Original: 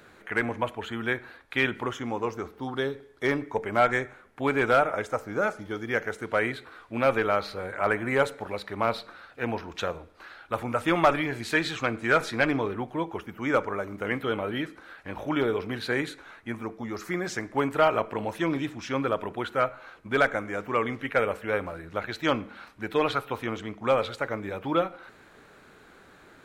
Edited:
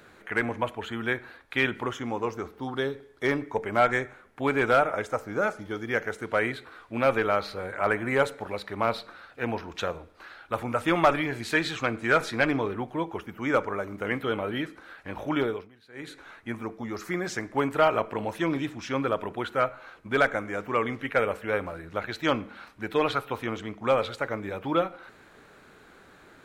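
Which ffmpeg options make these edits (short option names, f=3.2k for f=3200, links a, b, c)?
-filter_complex "[0:a]asplit=3[a][b][c];[a]atrim=end=15.7,asetpts=PTS-STARTPTS,afade=t=out:st=15.4:d=0.3:silence=0.0630957[d];[b]atrim=start=15.7:end=15.93,asetpts=PTS-STARTPTS,volume=-24dB[e];[c]atrim=start=15.93,asetpts=PTS-STARTPTS,afade=t=in:d=0.3:silence=0.0630957[f];[d][e][f]concat=n=3:v=0:a=1"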